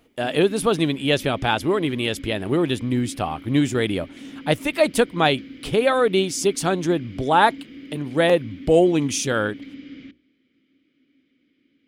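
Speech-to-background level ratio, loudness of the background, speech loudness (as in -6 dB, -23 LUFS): 18.5 dB, -40.0 LUFS, -21.5 LUFS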